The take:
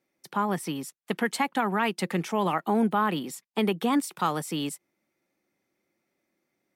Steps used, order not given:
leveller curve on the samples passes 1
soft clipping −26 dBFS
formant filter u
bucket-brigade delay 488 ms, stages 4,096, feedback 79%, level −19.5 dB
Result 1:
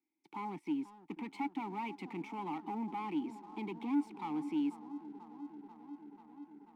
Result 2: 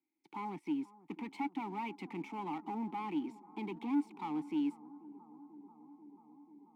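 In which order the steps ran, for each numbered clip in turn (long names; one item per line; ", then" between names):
bucket-brigade delay, then soft clipping, then formant filter, then leveller curve on the samples
soft clipping, then formant filter, then leveller curve on the samples, then bucket-brigade delay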